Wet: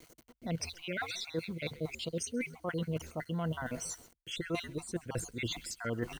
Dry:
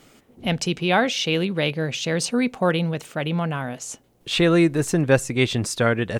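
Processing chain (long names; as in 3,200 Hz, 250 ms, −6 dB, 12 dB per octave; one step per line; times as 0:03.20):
time-frequency cells dropped at random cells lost 55%
echo with shifted repeats 133 ms, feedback 38%, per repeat −86 Hz, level −21 dB
in parallel at −2.5 dB: speech leveller within 4 dB 0.5 s
on the sum: noise gate with hold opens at −44 dBFS
bit reduction 8 bits
reversed playback
downward compressor 5 to 1, threshold −27 dBFS, peak gain reduction 14.5 dB
reversed playback
EQ curve with evenly spaced ripples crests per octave 1.9, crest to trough 6 dB
level −8 dB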